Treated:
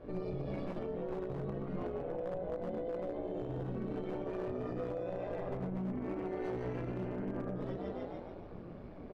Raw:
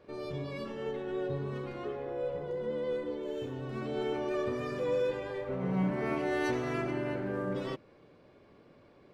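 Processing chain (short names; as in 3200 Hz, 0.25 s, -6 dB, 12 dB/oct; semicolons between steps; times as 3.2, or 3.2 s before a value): chorus voices 6, 0.27 Hz, delay 20 ms, depth 4.1 ms; frequency-shifting echo 0.145 s, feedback 46%, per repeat +62 Hz, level -4 dB; flange 1.9 Hz, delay 2.8 ms, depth 3.8 ms, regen +83%; compressor 5:1, threshold -50 dBFS, peak gain reduction 17 dB; tilt -4 dB/oct; AM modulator 180 Hz, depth 50%; one-sided clip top -42 dBFS, bottom -34 dBFS; limiter -42.5 dBFS, peak gain reduction 8 dB; low shelf 420 Hz -3.5 dB; gain +14.5 dB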